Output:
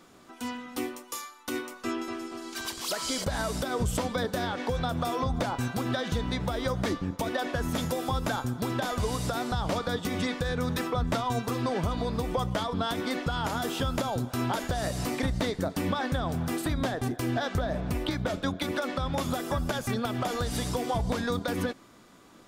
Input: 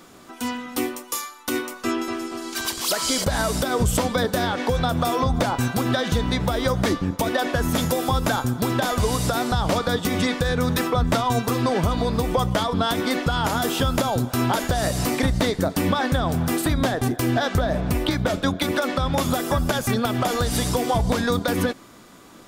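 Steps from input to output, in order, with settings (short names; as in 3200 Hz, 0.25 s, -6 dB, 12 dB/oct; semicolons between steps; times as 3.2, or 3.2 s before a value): high shelf 10000 Hz -6 dB; gain -7.5 dB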